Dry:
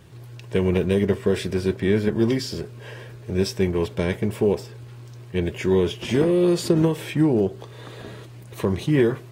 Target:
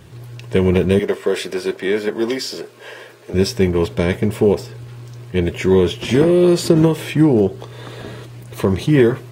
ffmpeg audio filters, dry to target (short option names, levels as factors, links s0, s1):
-filter_complex "[0:a]asettb=1/sr,asplit=3[s0][s1][s2];[s0]atrim=end=0.994[s3];[s1]atrim=start=0.99:end=3.34,asetpts=PTS-STARTPTS,afade=t=in:d=0.004:c=qsin,afade=t=out:st=2.346:d=0.004:c=qsin,highpass=390[s4];[s2]atrim=start=3.336[s5];[s3][s4]acrossfade=d=0.004:c1=hsin:c2=qsin[s6];[s6][s5]acrossfade=d=0.004:c1=qsin:c2=hsin,volume=2"